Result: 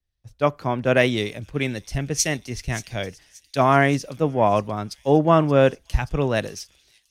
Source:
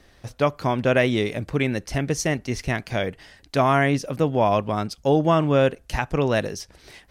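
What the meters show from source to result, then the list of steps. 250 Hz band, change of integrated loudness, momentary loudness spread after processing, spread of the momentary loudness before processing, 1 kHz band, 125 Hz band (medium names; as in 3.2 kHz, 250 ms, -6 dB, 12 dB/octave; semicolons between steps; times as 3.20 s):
0.0 dB, +1.0 dB, 13 LU, 9 LU, +1.5 dB, 0.0 dB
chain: feedback echo behind a high-pass 579 ms, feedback 61%, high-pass 5.5 kHz, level -6.5 dB; three bands expanded up and down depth 100%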